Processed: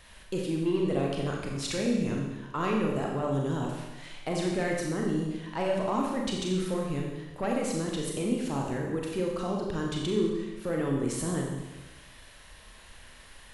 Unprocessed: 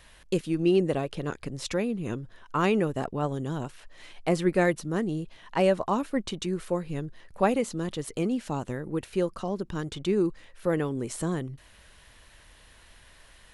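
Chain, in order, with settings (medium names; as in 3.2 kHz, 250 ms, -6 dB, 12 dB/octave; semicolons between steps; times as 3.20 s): saturation -16.5 dBFS, distortion -18 dB; peak limiter -24 dBFS, peak gain reduction 7 dB; Schroeder reverb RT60 1.1 s, combs from 29 ms, DRR -1 dB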